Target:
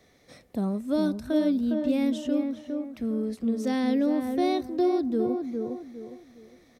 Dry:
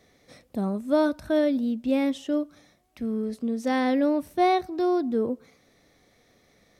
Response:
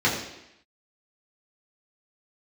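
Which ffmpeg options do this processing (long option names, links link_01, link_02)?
-filter_complex "[0:a]asplit=2[link_01][link_02];[link_02]adelay=408,lowpass=frequency=1200:poles=1,volume=-5dB,asplit=2[link_03][link_04];[link_04]adelay=408,lowpass=frequency=1200:poles=1,volume=0.32,asplit=2[link_05][link_06];[link_06]adelay=408,lowpass=frequency=1200:poles=1,volume=0.32,asplit=2[link_07][link_08];[link_08]adelay=408,lowpass=frequency=1200:poles=1,volume=0.32[link_09];[link_01][link_03][link_05][link_07][link_09]amix=inputs=5:normalize=0,acrossover=split=430|3000[link_10][link_11][link_12];[link_11]acompressor=threshold=-38dB:ratio=2.5[link_13];[link_10][link_13][link_12]amix=inputs=3:normalize=0"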